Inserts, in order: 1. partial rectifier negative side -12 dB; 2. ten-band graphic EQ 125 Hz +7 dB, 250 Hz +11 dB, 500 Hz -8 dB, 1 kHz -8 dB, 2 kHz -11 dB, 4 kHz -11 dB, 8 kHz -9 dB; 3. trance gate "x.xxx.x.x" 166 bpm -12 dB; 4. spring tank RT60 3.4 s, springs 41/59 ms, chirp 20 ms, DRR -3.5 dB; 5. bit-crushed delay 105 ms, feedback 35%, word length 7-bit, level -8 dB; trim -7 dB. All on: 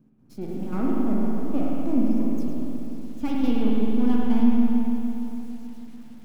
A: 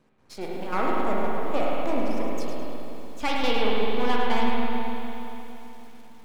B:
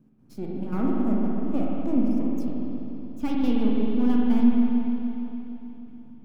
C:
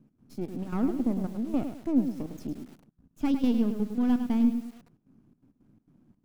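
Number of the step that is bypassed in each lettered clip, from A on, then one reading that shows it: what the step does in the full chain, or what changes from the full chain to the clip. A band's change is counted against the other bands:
2, 250 Hz band -17.0 dB; 5, crest factor change +1.5 dB; 4, momentary loudness spread change -2 LU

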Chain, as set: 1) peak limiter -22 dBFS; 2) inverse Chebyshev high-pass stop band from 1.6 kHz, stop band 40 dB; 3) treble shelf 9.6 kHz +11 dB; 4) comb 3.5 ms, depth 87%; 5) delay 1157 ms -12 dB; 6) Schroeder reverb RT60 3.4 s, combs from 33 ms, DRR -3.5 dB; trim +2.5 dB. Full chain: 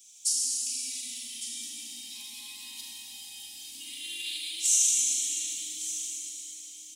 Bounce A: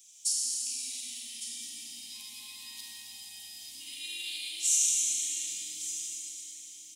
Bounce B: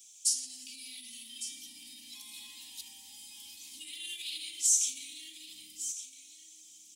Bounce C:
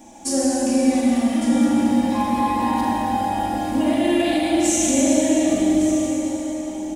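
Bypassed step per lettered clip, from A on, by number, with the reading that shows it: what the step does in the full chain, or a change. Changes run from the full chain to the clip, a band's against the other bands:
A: 4, loudness change -2.5 LU; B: 6, momentary loudness spread change +2 LU; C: 2, crest factor change -8.0 dB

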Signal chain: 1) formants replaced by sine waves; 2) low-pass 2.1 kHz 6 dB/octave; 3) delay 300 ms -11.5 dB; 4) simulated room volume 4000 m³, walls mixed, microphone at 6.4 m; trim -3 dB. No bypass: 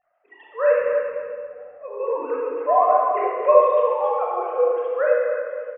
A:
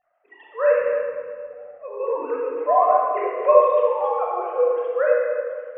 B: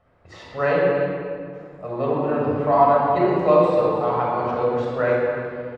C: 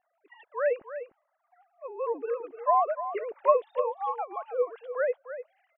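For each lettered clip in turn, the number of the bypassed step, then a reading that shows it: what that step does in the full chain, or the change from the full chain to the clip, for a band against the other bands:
3, momentary loudness spread change +2 LU; 1, 250 Hz band +17.0 dB; 4, echo-to-direct 5.0 dB to -11.5 dB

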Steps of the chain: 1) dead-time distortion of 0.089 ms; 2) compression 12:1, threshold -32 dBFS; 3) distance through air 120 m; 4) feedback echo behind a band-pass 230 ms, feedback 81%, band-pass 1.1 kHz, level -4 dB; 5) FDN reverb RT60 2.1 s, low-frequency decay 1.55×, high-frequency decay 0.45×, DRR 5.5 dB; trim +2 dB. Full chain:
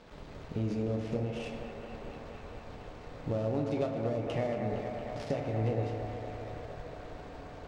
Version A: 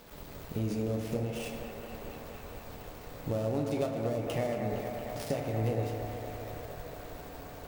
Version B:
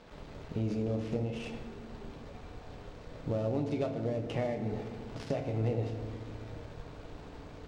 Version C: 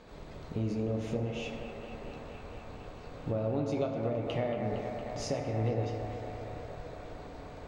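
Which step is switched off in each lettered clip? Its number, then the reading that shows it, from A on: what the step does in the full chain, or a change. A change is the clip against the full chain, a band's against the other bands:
3, 4 kHz band +3.0 dB; 4, echo-to-direct 1.0 dB to -5.5 dB; 1, distortion -18 dB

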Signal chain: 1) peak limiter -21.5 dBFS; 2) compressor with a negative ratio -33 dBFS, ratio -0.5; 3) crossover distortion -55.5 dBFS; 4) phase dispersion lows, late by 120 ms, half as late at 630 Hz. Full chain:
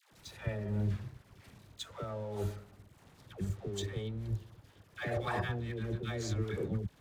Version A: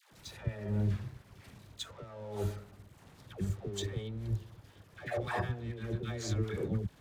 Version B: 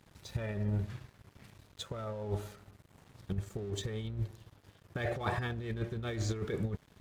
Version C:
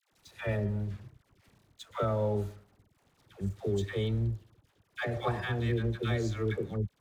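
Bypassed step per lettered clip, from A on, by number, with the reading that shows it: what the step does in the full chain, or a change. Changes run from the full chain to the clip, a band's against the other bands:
1, momentary loudness spread change +1 LU; 4, crest factor change +2.0 dB; 2, momentary loudness spread change -8 LU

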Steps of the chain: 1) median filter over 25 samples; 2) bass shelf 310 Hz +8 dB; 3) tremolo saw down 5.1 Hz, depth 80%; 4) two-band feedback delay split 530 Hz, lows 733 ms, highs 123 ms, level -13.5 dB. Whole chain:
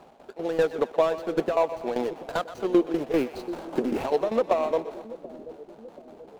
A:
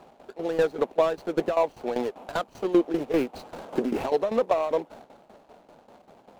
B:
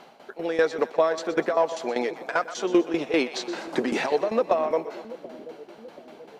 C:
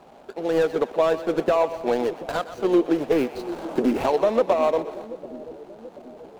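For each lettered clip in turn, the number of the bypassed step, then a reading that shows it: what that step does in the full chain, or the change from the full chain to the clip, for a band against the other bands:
4, echo-to-direct -12.0 dB to none; 1, 2 kHz band +7.0 dB; 3, crest factor change -3.5 dB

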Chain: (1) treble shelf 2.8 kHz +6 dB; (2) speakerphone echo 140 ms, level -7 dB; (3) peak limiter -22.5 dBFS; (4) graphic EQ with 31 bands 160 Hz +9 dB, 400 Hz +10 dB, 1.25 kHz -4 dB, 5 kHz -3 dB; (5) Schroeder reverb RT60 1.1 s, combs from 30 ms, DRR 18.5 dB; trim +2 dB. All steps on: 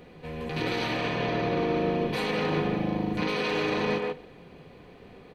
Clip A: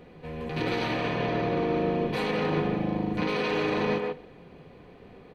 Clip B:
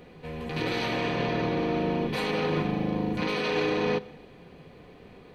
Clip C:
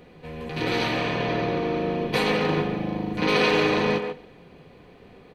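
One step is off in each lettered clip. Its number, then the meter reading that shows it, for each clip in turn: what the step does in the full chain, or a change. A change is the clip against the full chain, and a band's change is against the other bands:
1, 4 kHz band -3.0 dB; 2, momentary loudness spread change -1 LU; 3, mean gain reduction 2.0 dB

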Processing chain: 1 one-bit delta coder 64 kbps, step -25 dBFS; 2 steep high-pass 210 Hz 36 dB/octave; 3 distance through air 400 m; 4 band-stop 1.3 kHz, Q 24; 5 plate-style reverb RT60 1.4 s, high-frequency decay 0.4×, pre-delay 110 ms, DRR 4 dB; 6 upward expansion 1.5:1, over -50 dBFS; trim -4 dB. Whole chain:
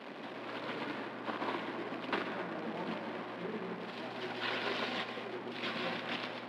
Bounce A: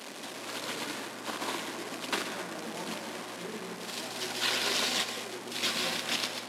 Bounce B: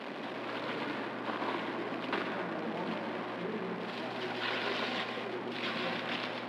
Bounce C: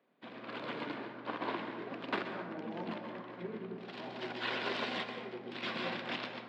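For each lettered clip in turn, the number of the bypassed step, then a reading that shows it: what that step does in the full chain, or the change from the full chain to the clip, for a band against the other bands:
3, 4 kHz band +10.0 dB; 6, loudness change +2.5 LU; 1, crest factor change +1.5 dB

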